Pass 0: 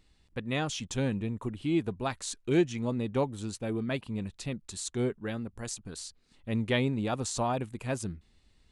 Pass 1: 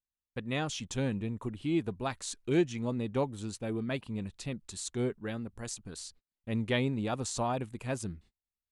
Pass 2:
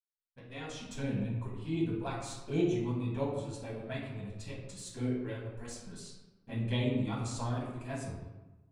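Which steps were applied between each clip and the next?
gate -53 dBFS, range -35 dB; trim -2 dB
fade-in on the opening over 1.01 s; touch-sensitive flanger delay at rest 10.8 ms, full sweep at -25.5 dBFS; reverberation RT60 1.1 s, pre-delay 4 ms, DRR -5.5 dB; trim -7.5 dB

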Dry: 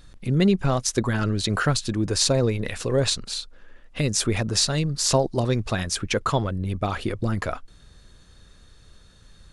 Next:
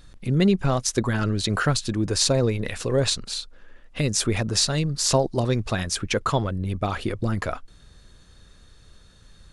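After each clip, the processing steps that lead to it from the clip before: no audible change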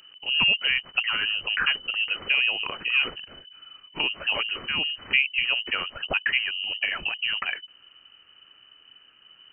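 bass shelf 210 Hz -6.5 dB; frequency inversion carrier 3 kHz

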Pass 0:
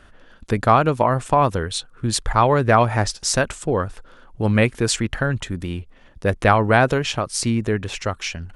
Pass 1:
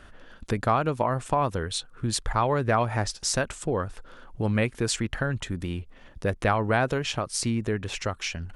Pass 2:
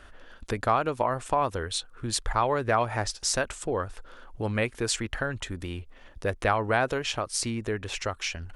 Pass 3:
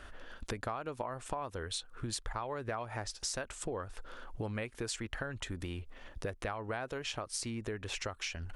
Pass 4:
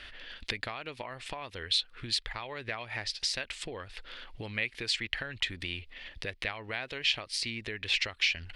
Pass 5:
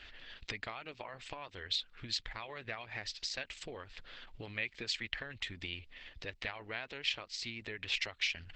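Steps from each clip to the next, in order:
compression 1.5:1, threshold -34 dBFS, peak gain reduction 9 dB
peaking EQ 160 Hz -8.5 dB 1.3 oct
compression 5:1, threshold -36 dBFS, peak gain reduction 16 dB
high-order bell 3 kHz +16 dB; trim -3 dB
trim -4.5 dB; Opus 12 kbps 48 kHz

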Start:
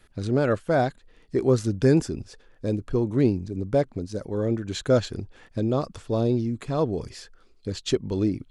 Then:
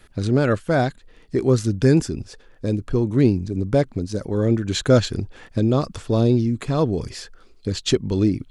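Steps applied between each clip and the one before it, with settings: dynamic bell 650 Hz, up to -5 dB, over -35 dBFS, Q 0.71; in parallel at +1 dB: gain riding 2 s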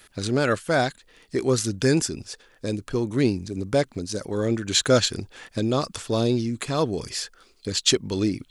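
tilt EQ +2.5 dB/octave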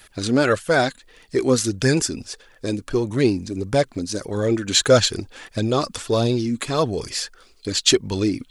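flange 1.6 Hz, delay 1 ms, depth 3.3 ms, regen +45%; trim +7.5 dB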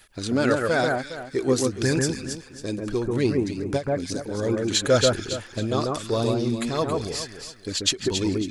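echo whose repeats swap between lows and highs 137 ms, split 1.9 kHz, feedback 53%, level -2 dB; endings held to a fixed fall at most 260 dB/s; trim -5 dB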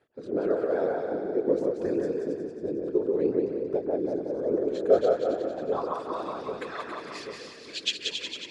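whisper effect; band-pass sweep 440 Hz -> 2.7 kHz, 4.77–7.47 s; two-band feedback delay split 420 Hz, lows 788 ms, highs 182 ms, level -4 dB

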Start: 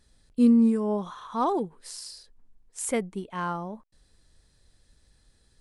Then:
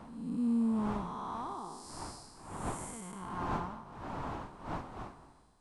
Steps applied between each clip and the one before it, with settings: spectral blur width 441 ms; wind noise 610 Hz -37 dBFS; graphic EQ 500/1000/2000/8000 Hz -9/+8/-3/+4 dB; trim -6 dB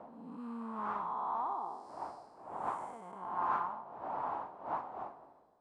auto-wah 580–1200 Hz, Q 2.1, up, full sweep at -30 dBFS; trim +6.5 dB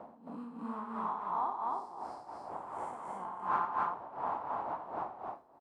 tremolo 2.8 Hz, depth 83%; on a send: loudspeakers at several distances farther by 30 m -9 dB, 92 m -1 dB; on the sum: trim +2.5 dB

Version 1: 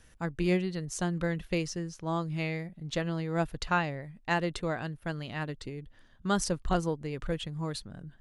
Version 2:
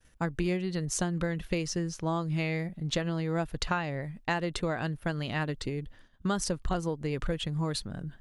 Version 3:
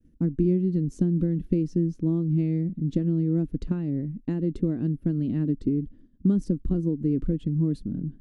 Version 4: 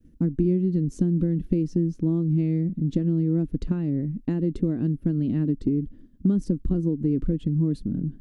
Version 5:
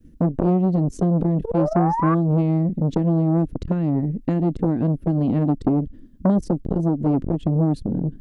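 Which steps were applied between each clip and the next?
expander -50 dBFS; compression 6:1, threshold -33 dBFS, peak gain reduction 11 dB; trim +6.5 dB
FFT filter 120 Hz 0 dB, 280 Hz +12 dB, 770 Hz -23 dB; trim +3 dB
compression 1.5:1, threshold -31 dBFS, peak gain reduction 5.5 dB; trim +5 dB
painted sound rise, 1.44–2.15 s, 430–1200 Hz -27 dBFS; transformer saturation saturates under 540 Hz; trim +6 dB

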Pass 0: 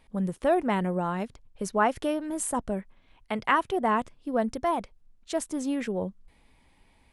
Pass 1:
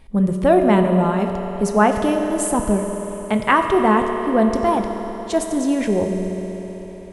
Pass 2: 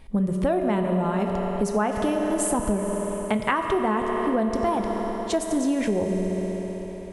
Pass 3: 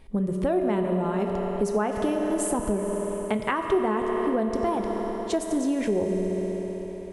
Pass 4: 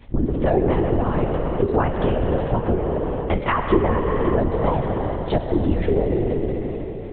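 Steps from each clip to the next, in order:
bass shelf 250 Hz +9 dB; reverberation RT60 4.4 s, pre-delay 3 ms, DRR 4 dB; trim +6.5 dB
compression, threshold -20 dBFS, peak gain reduction 10.5 dB
peaking EQ 390 Hz +5.5 dB 0.63 oct; trim -3.5 dB
LPC vocoder at 8 kHz whisper; trim +5.5 dB

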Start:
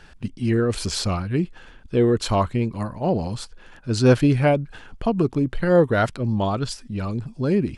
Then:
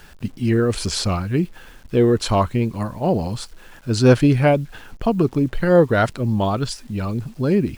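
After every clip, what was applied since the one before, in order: bit crusher 9-bit; trim +2.5 dB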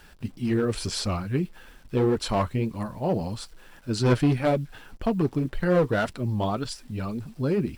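one-sided clip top -14 dBFS; flange 1.8 Hz, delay 3.1 ms, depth 5 ms, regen -48%; band-stop 6.6 kHz, Q 17; trim -2 dB

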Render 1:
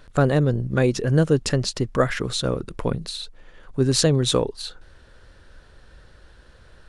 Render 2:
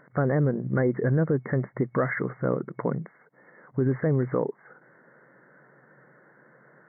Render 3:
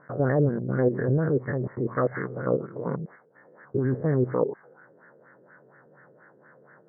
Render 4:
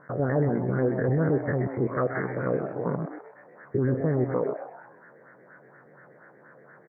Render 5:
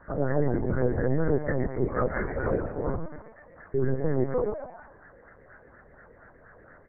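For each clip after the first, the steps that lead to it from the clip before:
FFT band-pass 120–2200 Hz; peak limiter -14.5 dBFS, peak gain reduction 7.5 dB
spectrogram pixelated in time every 100 ms; LFO low-pass sine 4.2 Hz 440–1800 Hz
peak limiter -18.5 dBFS, peak gain reduction 7.5 dB; frequency-shifting echo 128 ms, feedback 39%, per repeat +140 Hz, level -10 dB; trim +2 dB
LPC vocoder at 8 kHz pitch kept; AC-3 48 kbps 32 kHz

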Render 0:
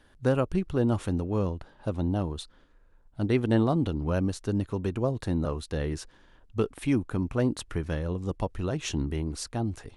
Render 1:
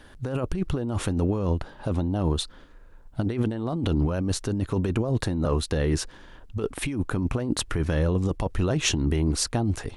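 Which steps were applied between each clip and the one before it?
compressor with a negative ratio -31 dBFS, ratio -1; trim +6.5 dB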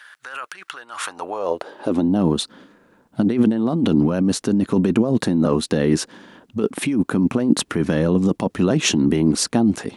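high-pass sweep 1.5 kHz -> 210 Hz, 0.90–2.11 s; trim +5 dB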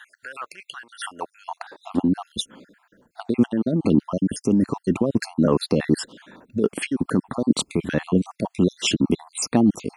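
random holes in the spectrogram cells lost 55%

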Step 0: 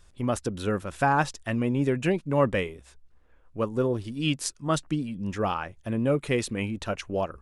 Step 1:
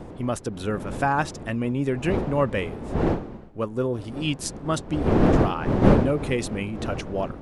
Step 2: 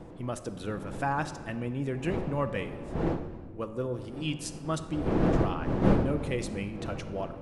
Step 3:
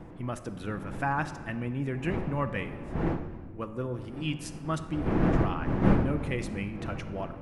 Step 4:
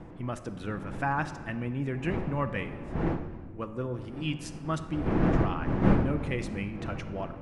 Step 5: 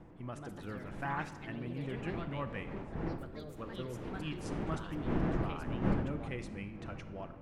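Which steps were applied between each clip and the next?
wind noise 370 Hz -26 dBFS
simulated room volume 2000 m³, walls mixed, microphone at 0.68 m; trim -7.5 dB
graphic EQ 500/2000/4000/8000 Hz -5/+3/-5/-6 dB; trim +1.5 dB
low-pass 9 kHz 12 dB/octave
ever faster or slower copies 187 ms, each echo +3 st, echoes 3, each echo -6 dB; trim -9 dB

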